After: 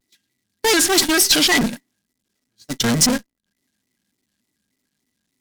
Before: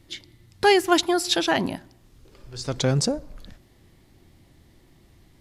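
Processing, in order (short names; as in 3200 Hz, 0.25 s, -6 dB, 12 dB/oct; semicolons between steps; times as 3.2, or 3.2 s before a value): zero-crossing step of -24 dBFS; HPF 76 Hz 6 dB/oct; notches 50/100/150/200/250 Hz; gate -22 dBFS, range -52 dB; high shelf 2500 Hz +9 dB; small resonant body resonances 230/1800 Hz, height 17 dB, ringing for 55 ms; tube stage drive 17 dB, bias 0.5; bell 6400 Hz +6.5 dB 2.7 oct; shaped vibrato square 3.4 Hz, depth 160 cents; gain +2 dB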